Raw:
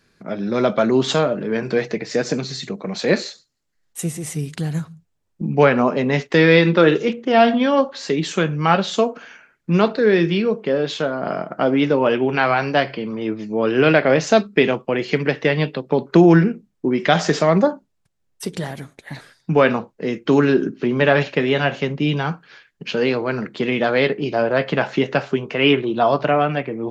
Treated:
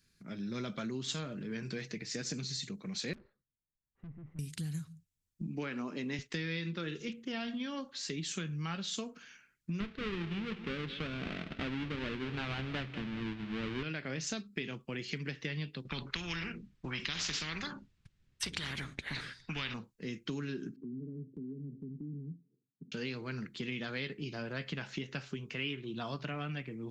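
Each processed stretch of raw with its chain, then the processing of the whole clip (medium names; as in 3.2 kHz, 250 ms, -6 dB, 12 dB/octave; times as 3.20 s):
3.13–4.39 s: low-pass 1.2 kHz 24 dB/octave + valve stage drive 32 dB, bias 0.65
5.47–6.19 s: high-pass 200 Hz + peaking EQ 310 Hz +10 dB 0.26 oct
9.80–13.83 s: square wave that keeps the level + low-pass 3.1 kHz 24 dB/octave + feedback delay 201 ms, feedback 44%, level -15.5 dB
15.85–19.74 s: low-pass 2.9 kHz + spectrum-flattening compressor 4:1
20.76–22.92 s: Chebyshev band-pass 110–430 Hz, order 4 + peaking EQ 260 Hz +9 dB 0.33 oct + compression 2.5:1, threshold -31 dBFS
whole clip: amplifier tone stack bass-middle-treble 6-0-2; compression 6:1, threshold -40 dBFS; treble shelf 6.1 kHz +7.5 dB; trim +5 dB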